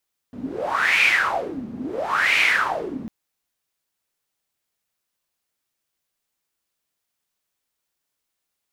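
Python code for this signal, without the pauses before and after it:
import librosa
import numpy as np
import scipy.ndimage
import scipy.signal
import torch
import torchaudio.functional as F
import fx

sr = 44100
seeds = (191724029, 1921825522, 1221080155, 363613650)

y = fx.wind(sr, seeds[0], length_s=2.75, low_hz=220.0, high_hz=2400.0, q=8.1, gusts=2, swing_db=15.5)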